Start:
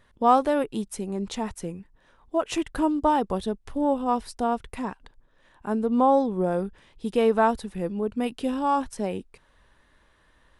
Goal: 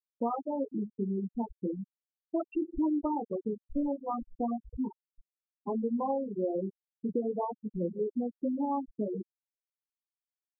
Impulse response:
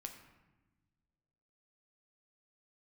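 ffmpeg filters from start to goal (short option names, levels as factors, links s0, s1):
-filter_complex "[0:a]asettb=1/sr,asplit=3[s0][s1][s2];[s0]atrim=end=5.974[s3];[s1]atrim=start=5.97:end=7.09,asetpts=PTS-STARTPTS,afade=t=in:d=0.004:c=qsin,afade=t=out:st=1.116:d=0.004:c=qsin,highpass=f=180:p=1[s4];[s2]atrim=start=7.086[s5];[s3][s4]acrossfade=d=0.004:c1=hsin:c2=qsin[s6];[s6][s5]acrossfade=d=0.004:c1=qsin:c2=hsin,flanger=delay=16.5:depth=5:speed=0.36,asettb=1/sr,asplit=3[s7][s8][s9];[s7]atrim=end=3.814[s10];[s8]atrim=start=3.81:end=4.77,asetpts=PTS-STARTPTS,afade=t=in:d=0.004:c=qsin,afade=t=out:st=0.956:d=0.004:c=qsin,asplit=2[s11][s12];[s12]adelay=18,volume=0.501[s13];[s11][s13]amix=inputs=2:normalize=0,atrim=end_sample=42336[s14];[s9]atrim=start=4.766[s15];[s10][s14]acrossfade=d=0.004:c1=hsin:c2=qsin[s16];[s16][s15]acrossfade=d=0.004:c1=qsin:c2=hsin,acompressor=threshold=0.0224:ratio=8,adynamicequalizer=threshold=0.00251:dfrequency=330:dqfactor=3.6:tfrequency=330:tqfactor=3.6:attack=5:release=100:ratio=0.375:range=2:mode=boostabove:tftype=bell,asuperstop=centerf=1700:order=4:qfactor=3.1,highshelf=f=3700:g=-4,aecho=1:1:259:0.075,asplit=2[s17][s18];[1:a]atrim=start_sample=2205,asetrate=22050,aresample=44100[s19];[s18][s19]afir=irnorm=-1:irlink=0,volume=0.75[s20];[s17][s20]amix=inputs=2:normalize=0,afftfilt=real='re*gte(hypot(re,im),0.1)':imag='im*gte(hypot(re,im),0.1)':win_size=1024:overlap=0.75"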